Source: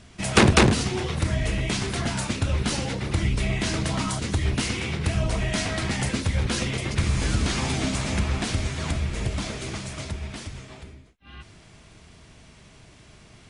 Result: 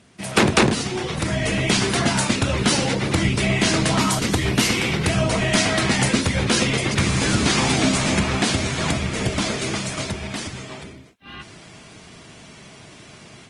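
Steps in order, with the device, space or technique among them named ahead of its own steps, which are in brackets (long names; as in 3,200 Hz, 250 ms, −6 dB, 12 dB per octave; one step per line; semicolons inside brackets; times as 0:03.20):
video call (high-pass filter 140 Hz 12 dB per octave; automatic gain control gain up to 9 dB; Opus 24 kbit/s 48,000 Hz)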